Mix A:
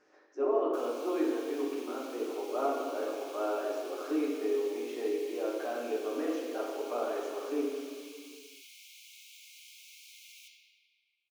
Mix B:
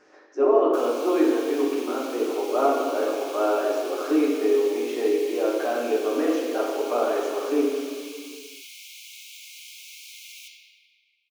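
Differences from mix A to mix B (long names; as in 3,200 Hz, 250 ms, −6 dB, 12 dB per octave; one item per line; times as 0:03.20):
speech +10.0 dB
background +10.0 dB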